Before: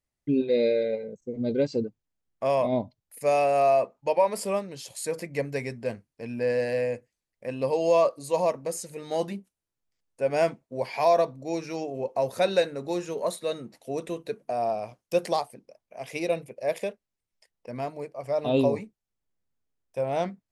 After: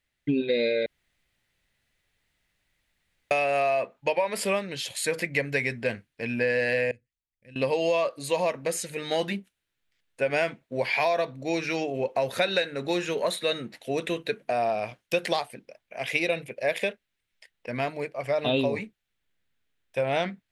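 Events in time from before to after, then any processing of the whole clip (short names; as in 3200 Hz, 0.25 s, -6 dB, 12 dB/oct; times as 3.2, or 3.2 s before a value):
0.86–3.31 room tone
6.91–7.56 passive tone stack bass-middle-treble 10-0-1
whole clip: band shelf 2400 Hz +10.5 dB; compressor, threshold -25 dBFS; gain +3.5 dB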